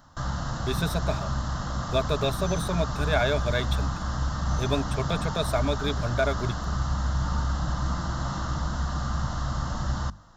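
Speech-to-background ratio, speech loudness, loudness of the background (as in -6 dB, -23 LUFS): 0.5 dB, -29.5 LUFS, -30.0 LUFS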